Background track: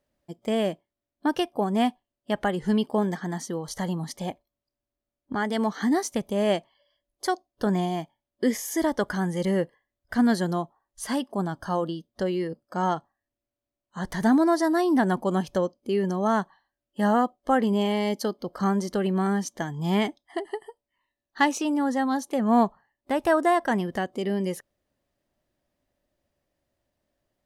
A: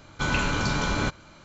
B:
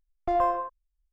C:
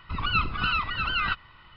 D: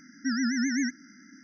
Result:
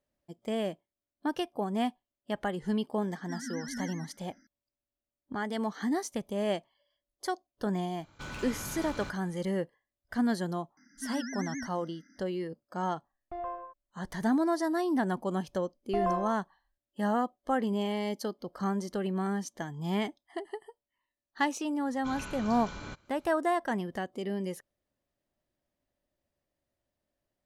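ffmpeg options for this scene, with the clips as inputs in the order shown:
-filter_complex "[4:a]asplit=2[a][b];[1:a]asplit=2[c][d];[2:a]asplit=2[e][f];[0:a]volume=-7dB[g];[a]aecho=1:1:121:0.562[h];[c]asoftclip=type=hard:threshold=-25.5dB[i];[b]equalizer=f=78:w=0.44:g=-4[j];[e]lowpass=3.1k[k];[h]atrim=end=1.43,asetpts=PTS-STARTPTS,volume=-13dB,afade=t=in:d=0.004:c=hsin,afade=t=out:st=1.426:d=0.004:c=hsin,adelay=3040[l];[i]atrim=end=1.44,asetpts=PTS-STARTPTS,volume=-12.5dB,afade=t=in:d=0.004:c=hsin,afade=t=out:st=1.436:d=0.004:c=hsin,adelay=8000[m];[j]atrim=end=1.43,asetpts=PTS-STARTPTS,volume=-9.5dB,afade=t=in:d=0.004:c=hsin,afade=t=out:st=1.426:d=0.004:c=hsin,adelay=10770[n];[k]atrim=end=1.12,asetpts=PTS-STARTPTS,volume=-13.5dB,afade=t=in:d=0.004:c=hsin,afade=t=out:st=1.116:d=0.004:c=hsin,adelay=13040[o];[f]atrim=end=1.12,asetpts=PTS-STARTPTS,volume=-6dB,afade=t=in:d=0.004:c=hsin,afade=t=out:st=1.116:d=0.004:c=hsin,adelay=15660[p];[d]atrim=end=1.44,asetpts=PTS-STARTPTS,volume=-16.5dB,afade=t=in:d=0.004:c=hsin,afade=t=out:st=1.436:d=0.004:c=hsin,adelay=21850[q];[g][l][m][n][o][p][q]amix=inputs=7:normalize=0"

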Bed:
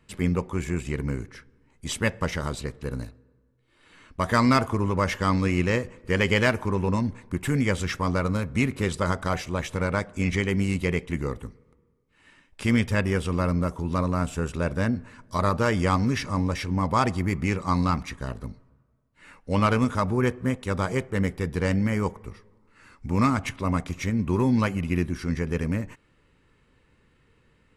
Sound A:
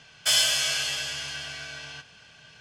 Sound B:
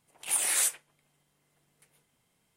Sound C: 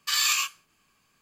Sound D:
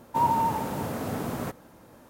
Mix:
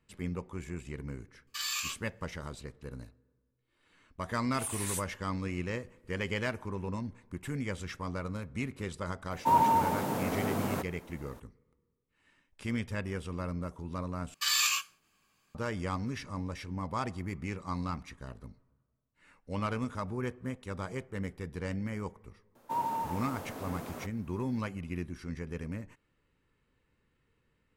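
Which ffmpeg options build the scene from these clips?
-filter_complex "[3:a]asplit=2[a][b];[4:a]asplit=2[c][d];[0:a]volume=-12dB[e];[c]highpass=140[f];[d]highpass=f=270:p=1[g];[e]asplit=2[h][i];[h]atrim=end=14.344[j];[b]atrim=end=1.21,asetpts=PTS-STARTPTS,volume=-4dB[k];[i]atrim=start=15.546[l];[a]atrim=end=1.21,asetpts=PTS-STARTPTS,volume=-11dB,afade=t=in:d=0.004:c=hsin,afade=t=out:st=1.206:d=0.004:c=hsin,adelay=1470[m];[2:a]atrim=end=2.56,asetpts=PTS-STARTPTS,volume=-10.5dB,afade=t=in:d=0.004:c=hsin,afade=t=out:st=2.556:d=0.004:c=hsin,adelay=4310[n];[f]atrim=end=2.09,asetpts=PTS-STARTPTS,volume=-0.5dB,afade=t=in:d=0.004:c=hsin,afade=t=out:st=2.086:d=0.004:c=hsin,adelay=9310[o];[g]atrim=end=2.09,asetpts=PTS-STARTPTS,volume=-8.5dB,afade=t=in:d=0.004:c=hsin,afade=t=out:st=2.086:d=0.004:c=hsin,adelay=22550[p];[j][k]acrossfade=d=0.004:c1=hsin:c2=hsin[q];[q][l]acrossfade=d=0.004:c1=hsin:c2=hsin[r];[r][m][n][o][p]amix=inputs=5:normalize=0"

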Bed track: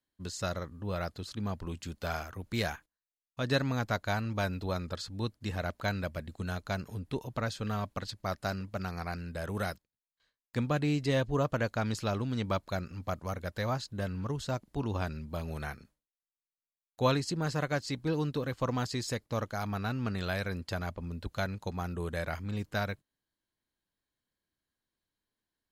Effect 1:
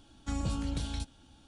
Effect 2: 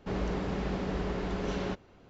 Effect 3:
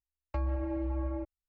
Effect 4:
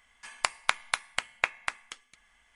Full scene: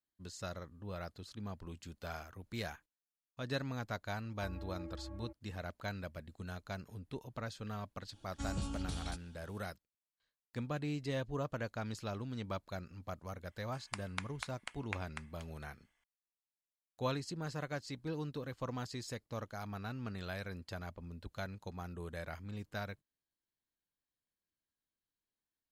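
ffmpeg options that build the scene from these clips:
-filter_complex "[0:a]volume=-9dB[a];[3:a]highpass=62[b];[1:a]highshelf=f=4.5k:g=4[c];[b]atrim=end=1.48,asetpts=PTS-STARTPTS,volume=-13dB,afade=t=in:d=0.004:c=hsin,afade=t=out:st=1.476:d=0.004:c=hsin,adelay=4080[d];[c]atrim=end=1.47,asetpts=PTS-STARTPTS,volume=-6.5dB,afade=t=in:d=0.004:c=hsin,afade=t=out:st=1.466:d=0.004:c=hsin,adelay=8120[e];[4:a]atrim=end=2.55,asetpts=PTS-STARTPTS,volume=-15dB,afade=t=in:d=0.004:c=hsin,afade=t=out:st=2.546:d=0.004:c=hsin,adelay=13490[f];[a][d][e][f]amix=inputs=4:normalize=0"

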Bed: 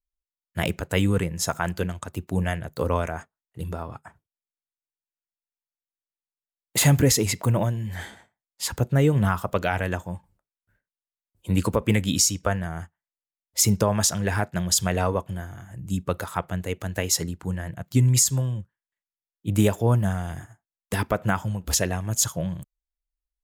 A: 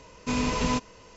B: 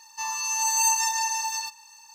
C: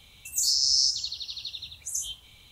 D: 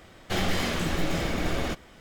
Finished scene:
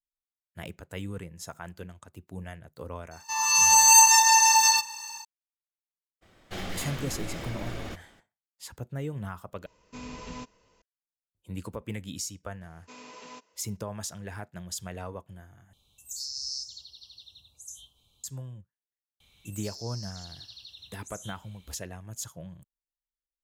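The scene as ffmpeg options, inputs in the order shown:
-filter_complex "[1:a]asplit=2[a][b];[3:a]asplit=2[c][d];[0:a]volume=-15dB[e];[2:a]dynaudnorm=f=230:g=3:m=14dB[f];[b]highpass=380[g];[c]asuperstop=centerf=1900:order=4:qfactor=1[h];[d]acompressor=threshold=-32dB:ratio=6:attack=3.2:release=140:knee=1:detection=peak[i];[e]asplit=3[j][k][l];[j]atrim=end=9.664[m];[a]atrim=end=1.16,asetpts=PTS-STARTPTS,volume=-14.5dB[n];[k]atrim=start=10.816:end=15.734[o];[h]atrim=end=2.51,asetpts=PTS-STARTPTS,volume=-12.5dB[p];[l]atrim=start=18.236[q];[f]atrim=end=2.14,asetpts=PTS-STARTPTS,volume=-2.5dB,afade=t=in:d=0.004:c=hsin,afade=t=out:st=2.136:d=0.004:c=hsin,adelay=3110[r];[4:a]atrim=end=2,asetpts=PTS-STARTPTS,volume=-9dB,afade=t=in:d=0.02,afade=t=out:st=1.98:d=0.02,adelay=6210[s];[g]atrim=end=1.16,asetpts=PTS-STARTPTS,volume=-17dB,afade=t=in:d=0.004:c=hsin,afade=t=out:st=1.156:d=0.004:c=hsin,adelay=12610[t];[i]atrim=end=2.51,asetpts=PTS-STARTPTS,volume=-9dB,afade=t=in:d=0.004:c=hsin,afade=t=out:st=2.506:d=0.004:c=hsin,adelay=19200[u];[m][n]acrossfade=d=0.004:c1=hsin:c2=hsin[v];[v][o]acrossfade=d=0.004:c1=hsin:c2=hsin[w];[w][p]acrossfade=d=0.004:c1=hsin:c2=hsin[x];[x][q]acrossfade=d=0.004:c1=hsin:c2=hsin[y];[y][r][s][t][u]amix=inputs=5:normalize=0"

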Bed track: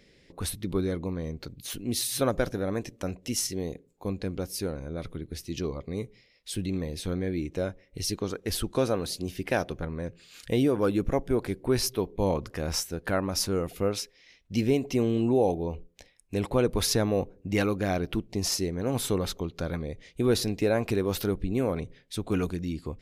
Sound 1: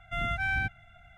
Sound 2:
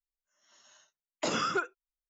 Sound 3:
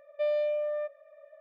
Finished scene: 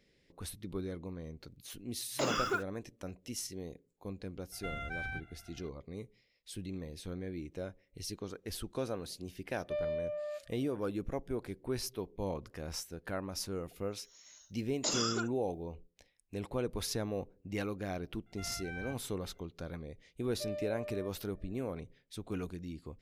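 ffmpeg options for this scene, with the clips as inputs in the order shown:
-filter_complex "[2:a]asplit=2[a][b];[1:a]asplit=2[c][d];[3:a]asplit=2[e][f];[0:a]volume=-11dB[g];[a]acrusher=bits=7:mix=0:aa=0.5[h];[c]acompressor=threshold=-33dB:ratio=6:attack=3.2:release=140:knee=1:detection=peak[i];[b]aexciter=amount=6.2:drive=1.3:freq=3.7k[j];[h]atrim=end=2.09,asetpts=PTS-STARTPTS,volume=-3dB,afade=t=in:d=0.004:c=hsin,afade=t=out:st=2.086:d=0.004:c=hsin,adelay=960[k];[i]atrim=end=1.17,asetpts=PTS-STARTPTS,volume=-4dB,afade=t=in:d=0.004:c=hsin,afade=t=out:st=1.166:d=0.004:c=hsin,adelay=4520[l];[e]atrim=end=1.4,asetpts=PTS-STARTPTS,volume=-7.5dB,afade=t=in:d=0.004:c=hsin,afade=t=out:st=1.396:d=0.004:c=hsin,adelay=9510[m];[j]atrim=end=2.09,asetpts=PTS-STARTPTS,volume=-8dB,afade=t=in:d=0.004:c=hsin,afade=t=out:st=2.086:d=0.004:c=hsin,adelay=13610[n];[d]atrim=end=1.17,asetpts=PTS-STARTPTS,volume=-15.5dB,afade=t=in:d=0.004:c=hsin,afade=t=out:st=1.166:d=0.004:c=hsin,adelay=18260[o];[f]atrim=end=1.4,asetpts=PTS-STARTPTS,volume=-12.5dB,afade=t=in:d=0.004:c=hsin,afade=t=out:st=1.396:d=0.004:c=hsin,adelay=20210[p];[g][k][l][m][n][o][p]amix=inputs=7:normalize=0"

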